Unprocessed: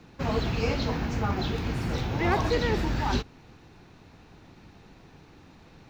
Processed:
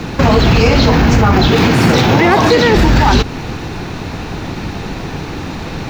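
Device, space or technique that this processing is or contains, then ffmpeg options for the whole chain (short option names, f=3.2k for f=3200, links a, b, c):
loud club master: -filter_complex "[0:a]asettb=1/sr,asplit=3[a][b][c];[a]atrim=end=1.504[d];[b]atrim=start=1.5:end=2.75,asetpts=PTS-STARTPTS,afade=t=in:d=0.004:c=qsin,afade=t=out:st=1.246:d=0.004:c=qsin,highpass=140[e];[c]atrim=start=2.746[f];[d][e]acrossfade=d=0.004:c1=hsin:c2=qsin[g];[g][f]acrossfade=d=0.004:c1=qsin:c2=hsin,acompressor=threshold=-29dB:ratio=2,asoftclip=type=hard:threshold=-21.5dB,alimiter=level_in=30dB:limit=-1dB:release=50:level=0:latency=1,volume=-1dB"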